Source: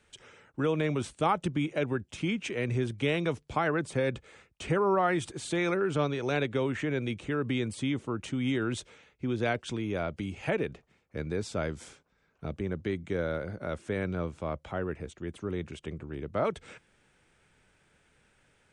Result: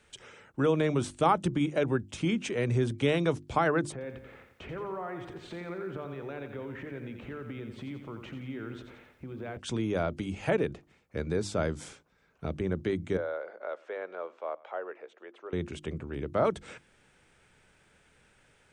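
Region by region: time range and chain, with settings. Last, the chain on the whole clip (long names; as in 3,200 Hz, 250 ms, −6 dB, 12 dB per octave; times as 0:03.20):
0:03.92–0:09.57: low-pass filter 2,100 Hz + downward compressor 2.5 to 1, threshold −45 dBFS + feedback echo at a low word length 87 ms, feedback 55%, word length 12 bits, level −8 dB
0:13.17–0:15.53: high-pass filter 500 Hz 24 dB per octave + head-to-tape spacing loss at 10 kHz 32 dB + single-tap delay 103 ms −23.5 dB
whole clip: mains-hum notches 50/100/150/200/250/300/350 Hz; dynamic equaliser 2,400 Hz, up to −5 dB, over −50 dBFS, Q 1.5; level +3 dB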